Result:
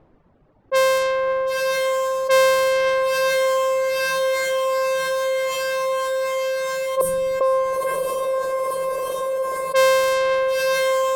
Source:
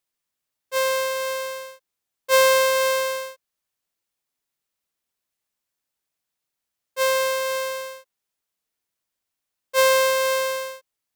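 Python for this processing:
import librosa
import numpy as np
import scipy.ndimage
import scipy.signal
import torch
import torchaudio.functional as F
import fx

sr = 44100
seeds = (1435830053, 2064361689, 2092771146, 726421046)

y = fx.spec_box(x, sr, start_s=6.51, length_s=1.35, low_hz=1100.0, high_hz=8400.0, gain_db=-17)
y = fx.cheby1_bandstop(y, sr, low_hz=280.0, high_hz=8500.0, order=2, at=(7.01, 7.41))
y = fx.dereverb_blind(y, sr, rt60_s=1.4)
y = fx.env_lowpass(y, sr, base_hz=650.0, full_db=-23.0)
y = fx.tilt_eq(y, sr, slope=-1.5)
y = fx.echo_diffused(y, sr, ms=975, feedback_pct=63, wet_db=-11.5)
y = fx.env_flatten(y, sr, amount_pct=70)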